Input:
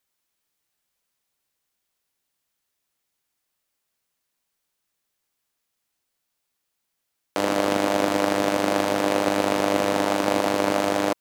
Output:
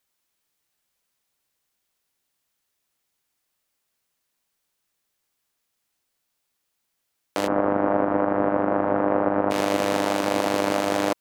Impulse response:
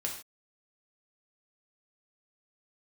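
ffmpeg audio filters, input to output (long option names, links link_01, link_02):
-filter_complex "[0:a]asplit=3[link_01][link_02][link_03];[link_01]afade=type=out:start_time=7.46:duration=0.02[link_04];[link_02]lowpass=frequency=1500:width=0.5412,lowpass=frequency=1500:width=1.3066,afade=type=in:start_time=7.46:duration=0.02,afade=type=out:start_time=9.5:duration=0.02[link_05];[link_03]afade=type=in:start_time=9.5:duration=0.02[link_06];[link_04][link_05][link_06]amix=inputs=3:normalize=0,alimiter=limit=-9.5dB:level=0:latency=1:release=99,volume=1.5dB"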